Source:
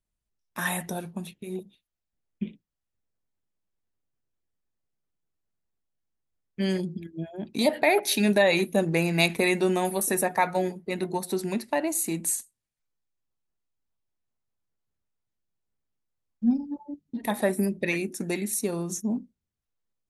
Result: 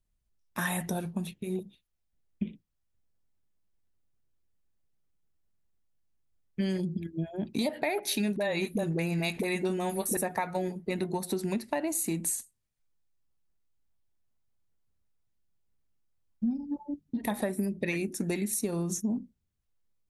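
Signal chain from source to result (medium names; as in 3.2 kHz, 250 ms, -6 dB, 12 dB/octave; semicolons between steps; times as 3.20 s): bass shelf 160 Hz +8.5 dB; compression 6:1, threshold -27 dBFS, peak gain reduction 12 dB; 8.36–10.17 s: phase dispersion highs, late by 45 ms, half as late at 450 Hz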